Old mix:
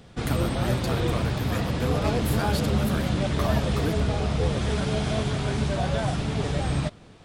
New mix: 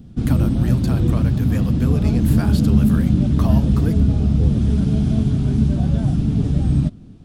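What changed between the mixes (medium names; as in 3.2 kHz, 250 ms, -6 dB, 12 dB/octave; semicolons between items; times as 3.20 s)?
background: add graphic EQ 250/500/1000/2000/4000/8000 Hz +9/-8/-8/-10/-5/-6 dB; master: add bass shelf 220 Hz +10.5 dB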